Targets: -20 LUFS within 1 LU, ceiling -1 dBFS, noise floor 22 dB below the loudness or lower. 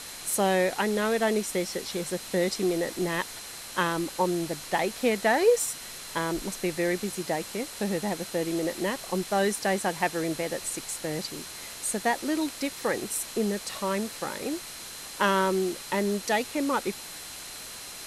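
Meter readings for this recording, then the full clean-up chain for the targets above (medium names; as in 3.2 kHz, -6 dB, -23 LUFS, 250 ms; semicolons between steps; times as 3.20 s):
steady tone 4.1 kHz; tone level -48 dBFS; noise floor -41 dBFS; noise floor target -51 dBFS; loudness -28.5 LUFS; peak level -10.0 dBFS; loudness target -20.0 LUFS
-> band-stop 4.1 kHz, Q 30; noise print and reduce 10 dB; trim +8.5 dB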